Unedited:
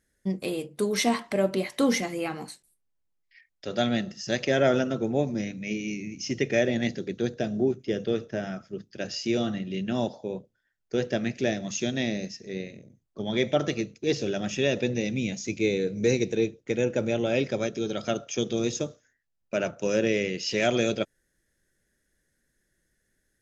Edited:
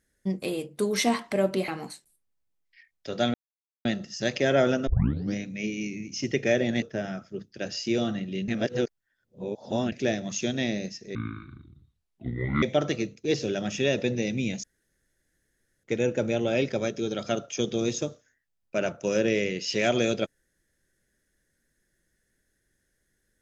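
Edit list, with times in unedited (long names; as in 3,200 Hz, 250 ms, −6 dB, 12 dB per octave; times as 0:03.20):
0:01.68–0:02.26: remove
0:03.92: splice in silence 0.51 s
0:04.94: tape start 0.47 s
0:06.89–0:08.21: remove
0:09.87–0:11.31: reverse
0:12.54–0:13.41: play speed 59%
0:15.42–0:16.62: fill with room tone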